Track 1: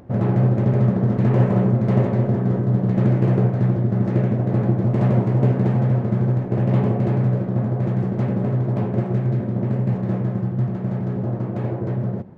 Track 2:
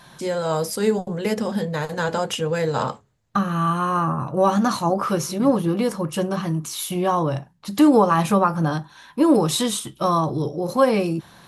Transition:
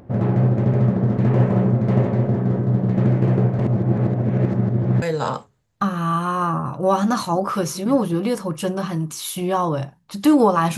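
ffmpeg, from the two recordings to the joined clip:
-filter_complex "[0:a]apad=whole_dur=10.77,atrim=end=10.77,asplit=2[a][b];[a]atrim=end=3.592[c];[b]atrim=start=3.588:end=5.022,asetpts=PTS-STARTPTS,areverse[d];[1:a]atrim=start=2.558:end=8.31[e];[c][d]acrossfade=d=0.004:c1=hsin:c2=hsin[f];[f][e]acrossfade=d=0.004:c1=hsin:c2=hsin"

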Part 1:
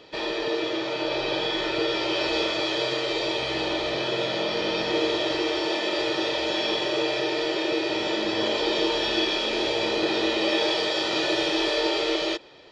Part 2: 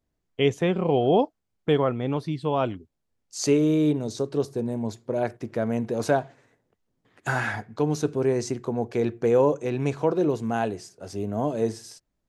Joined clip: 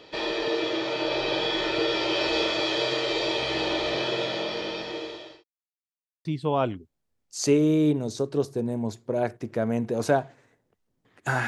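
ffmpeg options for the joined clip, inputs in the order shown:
-filter_complex "[0:a]apad=whole_dur=11.47,atrim=end=11.47,asplit=2[a][b];[a]atrim=end=5.44,asetpts=PTS-STARTPTS,afade=t=out:st=3.98:d=1.46[c];[b]atrim=start=5.44:end=6.25,asetpts=PTS-STARTPTS,volume=0[d];[1:a]atrim=start=2.25:end=7.47,asetpts=PTS-STARTPTS,afade=t=in:d=0.004:c=hsin[e];[c][d][e]concat=n=3:v=0:a=1"

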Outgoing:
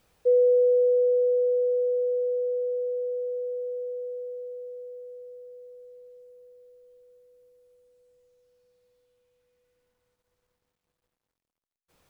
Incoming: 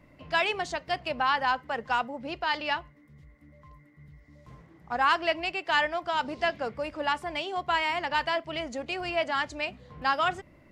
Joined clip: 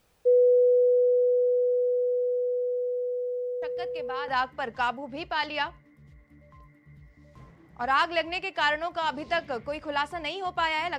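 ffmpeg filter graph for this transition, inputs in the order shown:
-filter_complex "[1:a]asplit=2[a][b];[0:a]apad=whole_dur=10.98,atrim=end=10.98,atrim=end=4.282[c];[b]atrim=start=1.388:end=8.09[d];[a]atrim=start=0.73:end=1.39,asetpts=PTS-STARTPTS,volume=-9.5dB,afade=t=in:d=0.004:c=hsin,afade=t=out:st=0.656:d=0.004:c=hsin,adelay=3620[e];[c][d]acrossfade=d=0.004:c1=hsin:c2=hsin[f];[f][e]amix=inputs=2:normalize=0"

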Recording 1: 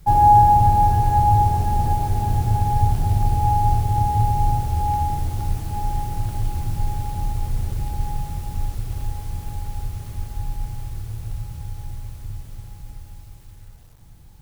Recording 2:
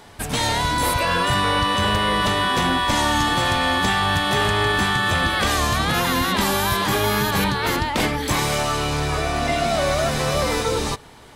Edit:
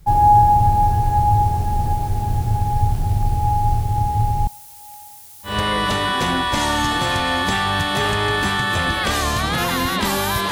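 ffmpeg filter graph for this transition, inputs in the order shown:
-filter_complex "[0:a]asettb=1/sr,asplit=3[a][b][c];[a]atrim=end=4.474[d];[b]atrim=start=4.47:end=5.59,asetpts=PTS-STARTPTS,afade=t=in:d=0.004:c=qsin,afade=t=out:st=1.116:d=0.004:c=qsin,aderivative[e];[c]atrim=start=5.586[f];[d][e]acrossfade=d=0.004:c1=hsin:c2=qsin[g];[g][f]acrossfade=d=0.004:c1=qsin:c2=hsin,apad=whole_dur=10.51,atrim=end=10.51,atrim=end=5.59,asetpts=PTS-STARTPTS[h];[1:a]atrim=start=1.79:end=6.87,asetpts=PTS-STARTPTS[i];[h][i]acrossfade=d=0.16:c1=tri:c2=tri"

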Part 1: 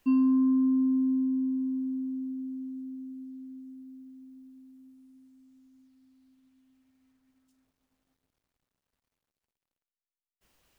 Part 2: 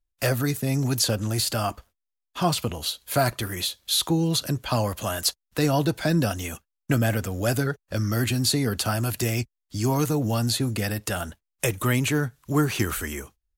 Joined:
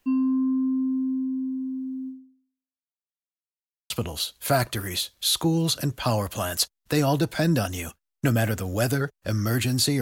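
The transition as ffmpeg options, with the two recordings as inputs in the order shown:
-filter_complex "[0:a]apad=whole_dur=10.01,atrim=end=10.01,asplit=2[a][b];[a]atrim=end=3.05,asetpts=PTS-STARTPTS,afade=t=out:st=2.08:d=0.97:c=exp[c];[b]atrim=start=3.05:end=3.9,asetpts=PTS-STARTPTS,volume=0[d];[1:a]atrim=start=2.56:end=8.67,asetpts=PTS-STARTPTS,afade=t=in:d=0.004:c=hsin[e];[c][d][e]concat=n=3:v=0:a=1"

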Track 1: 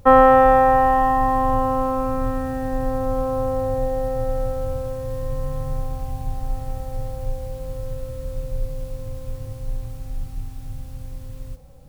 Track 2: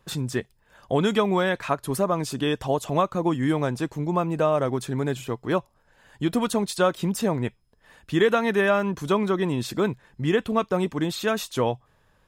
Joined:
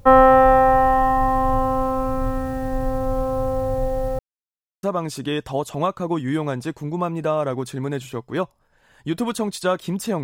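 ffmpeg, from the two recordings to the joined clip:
-filter_complex "[0:a]apad=whole_dur=10.23,atrim=end=10.23,asplit=2[a][b];[a]atrim=end=4.19,asetpts=PTS-STARTPTS,afade=t=out:st=4.186:d=0.004:c=hsin[c];[b]atrim=start=4.19:end=4.83,asetpts=PTS-STARTPTS,volume=0[d];[1:a]atrim=start=1.98:end=7.38,asetpts=PTS-STARTPTS,afade=t=in:d=0.004:c=hsin[e];[c][d][e]concat=n=3:v=0:a=1"

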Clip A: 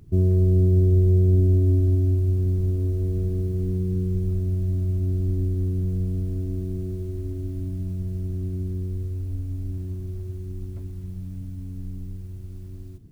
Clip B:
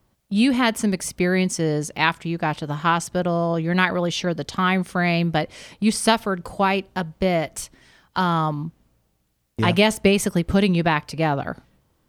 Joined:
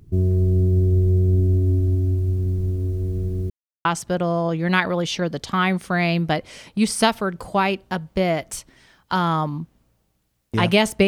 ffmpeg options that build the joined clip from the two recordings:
-filter_complex "[0:a]apad=whole_dur=11.07,atrim=end=11.07,asplit=2[a][b];[a]atrim=end=3.5,asetpts=PTS-STARTPTS,afade=t=out:st=3.496:d=0.004:c=hsin[c];[b]atrim=start=3.5:end=3.85,asetpts=PTS-STARTPTS,volume=0[d];[1:a]atrim=start=2.9:end=10.12,asetpts=PTS-STARTPTS,afade=t=in:d=0.004:c=hsin[e];[c][d][e]concat=n=3:v=0:a=1"

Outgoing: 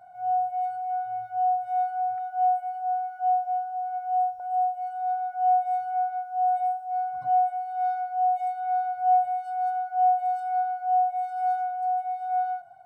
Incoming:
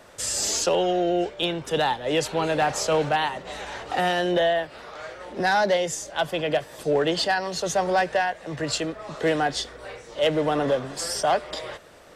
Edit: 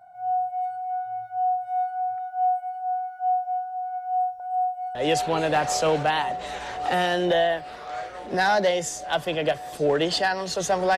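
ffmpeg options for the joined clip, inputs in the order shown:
-filter_complex "[0:a]apad=whole_dur=10.97,atrim=end=10.97,atrim=end=4.952[a];[1:a]atrim=start=2.008:end=8.03[b];[a][b]acrossfade=d=0.004:c1=hsin:c2=hsin,asplit=2[c][d];[d]afade=t=in:st=4.3:d=0.01,afade=t=out:st=4.95:d=0.01,aecho=0:1:560|1120|1680|2240|2800|3360|3920|4480|5040|5600|6160|6720:0.707946|0.601754|0.511491|0.434767|0.369552|0.314119|0.267001|0.226951|0.192909|0.163972|0.139376|0.11847[e];[c][e]amix=inputs=2:normalize=0"

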